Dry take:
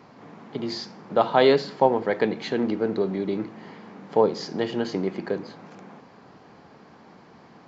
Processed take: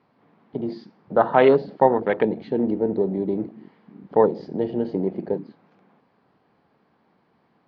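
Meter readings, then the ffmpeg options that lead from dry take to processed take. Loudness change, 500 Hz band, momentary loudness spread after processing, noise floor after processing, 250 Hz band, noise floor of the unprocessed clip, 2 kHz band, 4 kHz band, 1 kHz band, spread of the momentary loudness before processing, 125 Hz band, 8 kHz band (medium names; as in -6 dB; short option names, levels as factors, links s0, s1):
+2.5 dB, +2.5 dB, 14 LU, -65 dBFS, +2.5 dB, -51 dBFS, 0.0 dB, under -10 dB, +2.0 dB, 17 LU, +2.0 dB, no reading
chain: -af "afwtdn=0.0355,lowpass=f=4400:w=0.5412,lowpass=f=4400:w=1.3066,volume=1.33"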